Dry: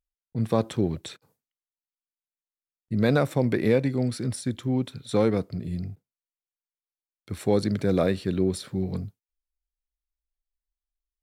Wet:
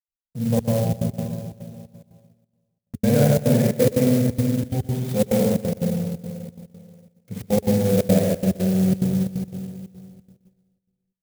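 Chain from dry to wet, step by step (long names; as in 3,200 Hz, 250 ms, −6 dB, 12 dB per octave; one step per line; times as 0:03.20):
0:00.55–0:02.94: harmonic-percussive split with one part muted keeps harmonic
phaser with its sweep stopped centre 320 Hz, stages 6
spring reverb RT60 2.4 s, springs 48/52 ms, chirp 65 ms, DRR −7 dB
automatic gain control gain up to 6 dB
noise gate −49 dBFS, range −10 dB
gate pattern ".x.xxxx.xxx" 178 BPM −60 dB
parametric band 85 Hz +10 dB 1.2 octaves
notch filter 420 Hz, Q 12
repeating echo 122 ms, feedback 35%, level −16 dB
converter with an unsteady clock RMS 0.065 ms
level −4.5 dB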